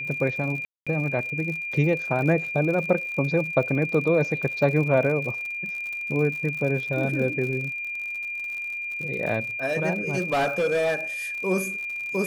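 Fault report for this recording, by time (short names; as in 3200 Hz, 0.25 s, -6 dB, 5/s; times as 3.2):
crackle 62/s -32 dBFS
tone 2400 Hz -29 dBFS
0.65–0.87 gap 0.216 s
10.18–10.95 clipped -19 dBFS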